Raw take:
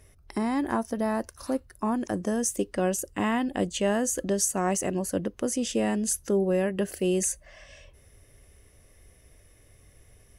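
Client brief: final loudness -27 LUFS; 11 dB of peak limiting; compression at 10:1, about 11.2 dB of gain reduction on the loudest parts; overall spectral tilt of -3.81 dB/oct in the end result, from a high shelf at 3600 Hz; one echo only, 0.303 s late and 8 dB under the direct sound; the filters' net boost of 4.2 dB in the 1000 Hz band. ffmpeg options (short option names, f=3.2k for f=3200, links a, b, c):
-af "equalizer=f=1k:t=o:g=5,highshelf=f=3.6k:g=7,acompressor=threshold=-28dB:ratio=10,alimiter=level_in=3dB:limit=-24dB:level=0:latency=1,volume=-3dB,aecho=1:1:303:0.398,volume=8.5dB"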